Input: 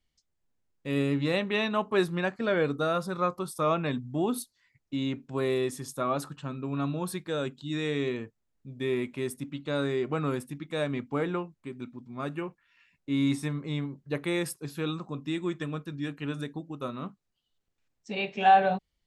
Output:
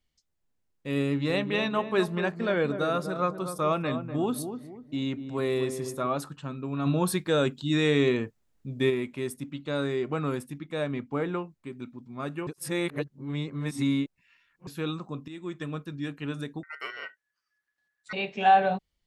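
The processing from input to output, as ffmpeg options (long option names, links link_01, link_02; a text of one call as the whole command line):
ffmpeg -i in.wav -filter_complex "[0:a]asettb=1/sr,asplit=3[link_01][link_02][link_03];[link_01]atrim=end=1.054[link_04];[link_02]atrim=start=1.05:end=6.07,asetpts=PTS-STARTPTS,afade=type=in:duration=0.004:curve=qsin,afade=type=out:start_time=5.016:duration=0.004:curve=qsin,asplit=2[link_05][link_06];[link_06]adelay=245,lowpass=frequency=910:poles=1,volume=-7.5dB,asplit=2[link_07][link_08];[link_08]adelay=245,lowpass=frequency=910:poles=1,volume=0.39,asplit=2[link_09][link_10];[link_10]adelay=245,lowpass=frequency=910:poles=1,volume=0.39,asplit=2[link_11][link_12];[link_12]adelay=245,lowpass=frequency=910:poles=1,volume=0.39[link_13];[link_05][link_07][link_09][link_11][link_13]amix=inputs=5:normalize=0,atrim=end_sample=221382[link_14];[link_03]atrim=start=6.066[link_15];[link_04][link_14]acrossfade=duration=0.004:curve1=hsin:curve2=qsin[link_16];[link_16][link_15]acrossfade=duration=0.004:curve1=qsin:curve2=hsin,asplit=3[link_17][link_18][link_19];[link_17]afade=type=out:start_time=6.85:duration=0.02[link_20];[link_18]acontrast=78,afade=type=in:start_time=6.85:duration=0.02,afade=type=out:start_time=8.89:duration=0.02[link_21];[link_19]afade=type=in:start_time=8.89:duration=0.02[link_22];[link_20][link_21][link_22]amix=inputs=3:normalize=0,asettb=1/sr,asplit=3[link_23][link_24][link_25];[link_23]atrim=end=10.594[link_26];[link_24]atrim=start=10.59:end=11.33,asetpts=PTS-STARTPTS,afade=type=in:duration=0.004:curve=qsin,afade=type=out:start_time=0.736:duration=0.004:curve=qsin,highshelf=frequency=3900:gain=-5.5[link_27];[link_25]atrim=start=11.326[link_28];[link_26][link_27]acrossfade=duration=0.004:curve1=hsin:curve2=qsin[link_29];[link_29][link_28]acrossfade=duration=0.004:curve1=qsin:curve2=hsin,asettb=1/sr,asplit=3[link_30][link_31][link_32];[link_30]atrim=end=16.634[link_33];[link_31]atrim=start=16.63:end=18.13,asetpts=PTS-STARTPTS,afade=type=in:duration=0.004:curve=qsin,afade=type=out:start_time=1.496:duration=0.004:curve=qsin,aeval=exprs='val(0)*sin(2*PI*1700*n/s)':channel_layout=same[link_34];[link_32]atrim=start=18.126[link_35];[link_33][link_34]acrossfade=duration=0.004:curve1=hsin:curve2=qsin[link_36];[link_36][link_35]acrossfade=duration=0.004:curve1=qsin:curve2=hsin,asplit=4[link_37][link_38][link_39][link_40];[link_37]atrim=end=12.472[link_41];[link_38]atrim=start=12.468:end=14.672,asetpts=PTS-STARTPTS,areverse[link_42];[link_39]atrim=start=14.668:end=15.28,asetpts=PTS-STARTPTS,afade=type=out:start_time=0.608:duration=0.004:curve=hsin:silence=0.199526[link_43];[link_40]atrim=start=15.28,asetpts=PTS-STARTPTS,afade=type=in:duration=0.43:silence=0.199526[link_44];[link_41][link_42]acrossfade=duration=0.004:curve1=hsin:curve2=hsin[link_45];[link_43][link_44]concat=n=2:v=0:a=1[link_46];[link_45][link_46]acrossfade=duration=0.004:curve1=hsin:curve2=hsin" out.wav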